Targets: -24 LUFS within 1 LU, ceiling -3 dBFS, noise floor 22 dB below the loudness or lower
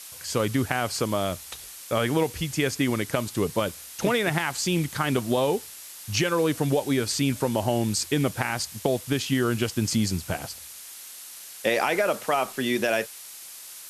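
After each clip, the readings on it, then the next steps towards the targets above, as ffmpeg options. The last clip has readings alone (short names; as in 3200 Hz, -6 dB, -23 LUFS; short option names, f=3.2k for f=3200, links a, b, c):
noise floor -43 dBFS; noise floor target -48 dBFS; loudness -26.0 LUFS; peak -6.0 dBFS; loudness target -24.0 LUFS
-> -af "afftdn=nr=6:nf=-43"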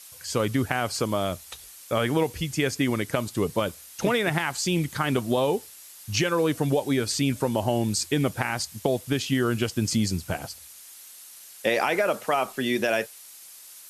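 noise floor -47 dBFS; noise floor target -48 dBFS
-> -af "afftdn=nr=6:nf=-47"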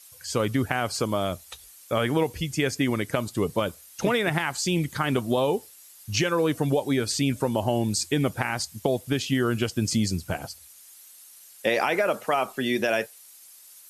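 noise floor -50 dBFS; loudness -26.0 LUFS; peak -6.5 dBFS; loudness target -24.0 LUFS
-> -af "volume=2dB"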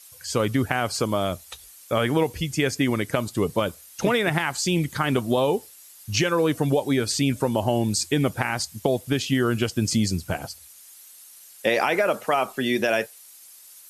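loudness -24.0 LUFS; peak -4.5 dBFS; noise floor -48 dBFS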